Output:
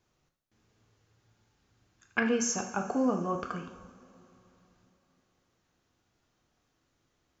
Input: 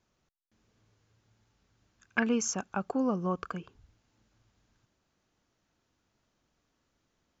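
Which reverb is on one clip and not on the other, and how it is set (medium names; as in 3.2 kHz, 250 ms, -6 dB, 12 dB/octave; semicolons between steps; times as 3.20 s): two-slope reverb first 0.62 s, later 3.4 s, from -18 dB, DRR 3 dB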